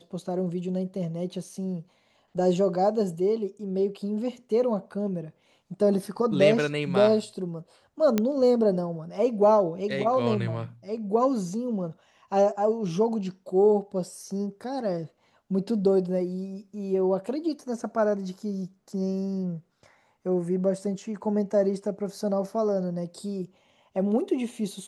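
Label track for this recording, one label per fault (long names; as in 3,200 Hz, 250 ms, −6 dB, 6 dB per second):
8.180000	8.180000	click −10 dBFS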